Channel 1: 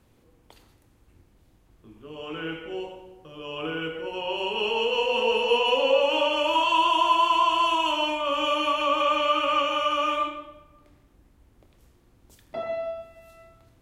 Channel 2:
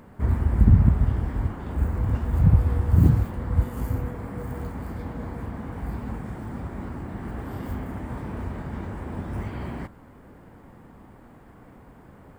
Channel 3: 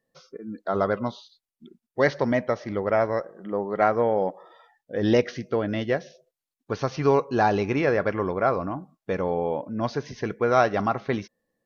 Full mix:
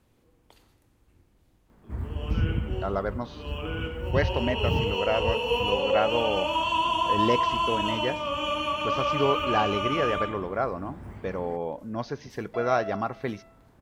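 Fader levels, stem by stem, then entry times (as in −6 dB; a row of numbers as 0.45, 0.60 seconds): −4.0, −10.5, −5.0 decibels; 0.00, 1.70, 2.15 seconds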